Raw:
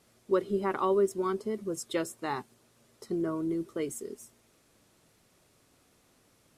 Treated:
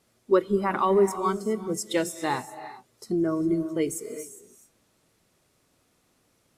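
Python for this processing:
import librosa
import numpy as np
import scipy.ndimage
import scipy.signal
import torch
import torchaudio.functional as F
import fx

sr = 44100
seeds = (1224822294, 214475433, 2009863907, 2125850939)

y = fx.rev_gated(x, sr, seeds[0], gate_ms=430, shape='rising', drr_db=8.5)
y = fx.noise_reduce_blind(y, sr, reduce_db=9)
y = F.gain(torch.from_numpy(y), 6.5).numpy()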